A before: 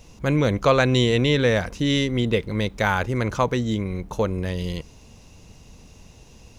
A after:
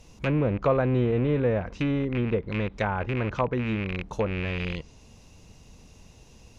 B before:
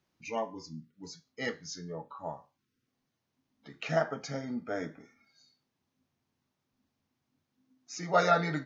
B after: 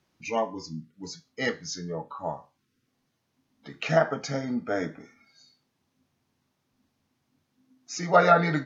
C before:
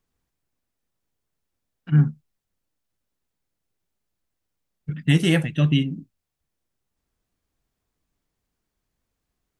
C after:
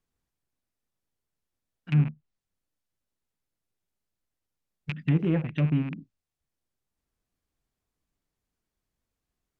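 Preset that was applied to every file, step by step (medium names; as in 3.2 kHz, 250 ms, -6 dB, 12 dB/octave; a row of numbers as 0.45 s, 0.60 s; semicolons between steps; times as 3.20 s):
rattle on loud lows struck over -26 dBFS, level -15 dBFS; low-pass that closes with the level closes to 1 kHz, closed at -16.5 dBFS; normalise loudness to -27 LUFS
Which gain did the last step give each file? -4.0 dB, +6.5 dB, -5.5 dB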